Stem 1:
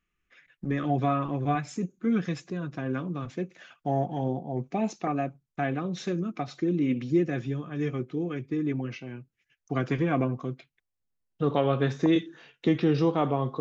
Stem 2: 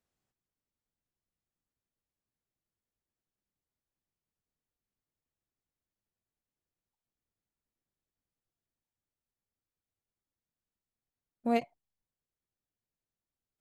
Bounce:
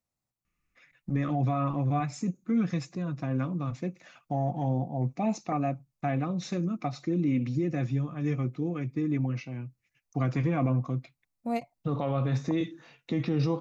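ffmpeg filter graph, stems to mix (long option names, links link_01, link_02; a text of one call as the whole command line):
ffmpeg -i stem1.wav -i stem2.wav -filter_complex "[0:a]alimiter=limit=-19.5dB:level=0:latency=1:release=29,adelay=450,volume=1dB[link_01];[1:a]volume=-1dB[link_02];[link_01][link_02]amix=inputs=2:normalize=0,equalizer=frequency=125:width_type=o:width=0.33:gain=5,equalizer=frequency=400:width_type=o:width=0.33:gain=-10,equalizer=frequency=1600:width_type=o:width=0.33:gain=-8,equalizer=frequency=3150:width_type=o:width=0.33:gain=-9" out.wav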